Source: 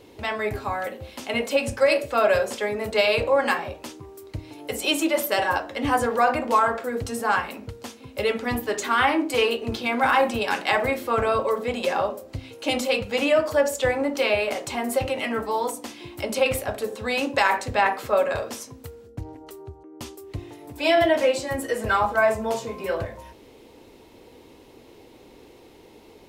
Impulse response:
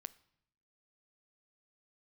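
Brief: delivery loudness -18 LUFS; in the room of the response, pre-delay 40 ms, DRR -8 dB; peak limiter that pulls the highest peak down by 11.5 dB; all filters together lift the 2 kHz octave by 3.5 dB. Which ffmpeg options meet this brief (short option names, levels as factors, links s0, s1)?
-filter_complex "[0:a]equalizer=f=2000:t=o:g=4.5,alimiter=limit=0.168:level=0:latency=1,asplit=2[s0][s1];[1:a]atrim=start_sample=2205,adelay=40[s2];[s1][s2]afir=irnorm=-1:irlink=0,volume=4.47[s3];[s0][s3]amix=inputs=2:normalize=0,volume=0.944"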